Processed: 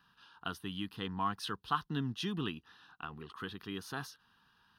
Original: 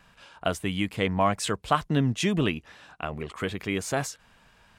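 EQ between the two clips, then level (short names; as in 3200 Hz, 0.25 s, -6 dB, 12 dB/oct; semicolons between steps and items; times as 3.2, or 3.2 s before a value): HPF 220 Hz 6 dB/oct; fixed phaser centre 2200 Hz, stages 6; -6.5 dB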